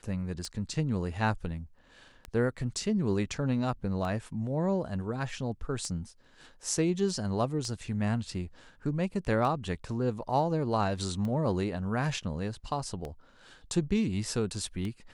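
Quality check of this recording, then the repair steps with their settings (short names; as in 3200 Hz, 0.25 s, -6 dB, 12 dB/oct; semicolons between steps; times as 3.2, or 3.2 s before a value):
tick 33 1/3 rpm -24 dBFS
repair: de-click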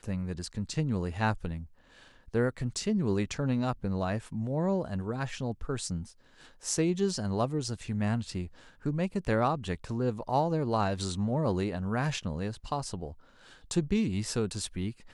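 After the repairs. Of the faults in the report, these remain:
none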